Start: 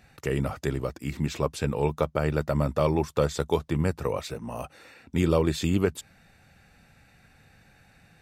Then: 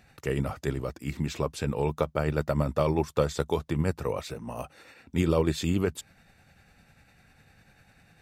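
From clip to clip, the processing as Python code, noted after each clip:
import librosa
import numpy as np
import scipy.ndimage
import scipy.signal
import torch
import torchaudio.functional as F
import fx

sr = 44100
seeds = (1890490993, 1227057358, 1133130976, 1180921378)

y = x * (1.0 - 0.35 / 2.0 + 0.35 / 2.0 * np.cos(2.0 * np.pi * 10.0 * (np.arange(len(x)) / sr)))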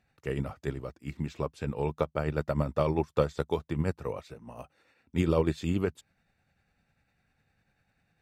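y = fx.high_shelf(x, sr, hz=6800.0, db=-8.0)
y = fx.upward_expand(y, sr, threshold_db=-47.0, expansion=1.5)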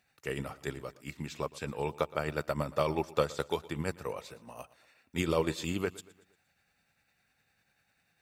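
y = fx.tilt_eq(x, sr, slope=2.5)
y = fx.echo_feedback(y, sr, ms=117, feedback_pct=47, wet_db=-20)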